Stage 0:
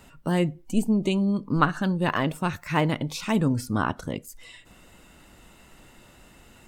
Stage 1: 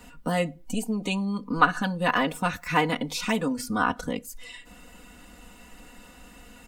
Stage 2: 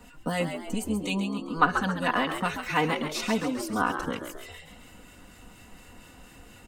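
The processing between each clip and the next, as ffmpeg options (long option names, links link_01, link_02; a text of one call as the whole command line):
ffmpeg -i in.wav -filter_complex "[0:a]aecho=1:1:4.1:0.99,acrossover=split=460[link_01][link_02];[link_01]acompressor=threshold=-28dB:ratio=6[link_03];[link_03][link_02]amix=inputs=2:normalize=0" out.wav
ffmpeg -i in.wav -filter_complex "[0:a]acrossover=split=1300[link_01][link_02];[link_01]aeval=exprs='val(0)*(1-0.5/2+0.5/2*cos(2*PI*4.2*n/s))':channel_layout=same[link_03];[link_02]aeval=exprs='val(0)*(1-0.5/2-0.5/2*cos(2*PI*4.2*n/s))':channel_layout=same[link_04];[link_03][link_04]amix=inputs=2:normalize=0,asplit=6[link_05][link_06][link_07][link_08][link_09][link_10];[link_06]adelay=135,afreqshift=74,volume=-8dB[link_11];[link_07]adelay=270,afreqshift=148,volume=-14.6dB[link_12];[link_08]adelay=405,afreqshift=222,volume=-21.1dB[link_13];[link_09]adelay=540,afreqshift=296,volume=-27.7dB[link_14];[link_10]adelay=675,afreqshift=370,volume=-34.2dB[link_15];[link_05][link_11][link_12][link_13][link_14][link_15]amix=inputs=6:normalize=0" out.wav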